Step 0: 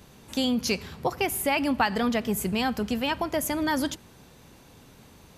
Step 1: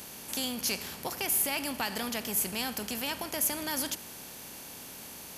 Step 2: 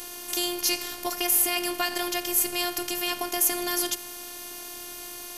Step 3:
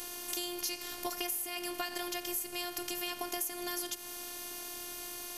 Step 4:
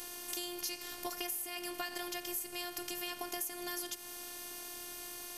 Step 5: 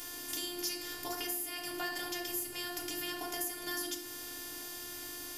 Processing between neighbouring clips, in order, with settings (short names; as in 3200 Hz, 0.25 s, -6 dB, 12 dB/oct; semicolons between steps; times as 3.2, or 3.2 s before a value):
per-bin compression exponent 0.6; pre-emphasis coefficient 0.8
robotiser 354 Hz; gain +8 dB
compressor 5:1, threshold -28 dBFS, peak gain reduction 12.5 dB; gain -3.5 dB
resonator 160 Hz, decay 0.26 s, harmonics odd, mix 50%; gain +2.5 dB
FDN reverb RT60 0.63 s, low-frequency decay 1.6×, high-frequency decay 0.6×, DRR -0.5 dB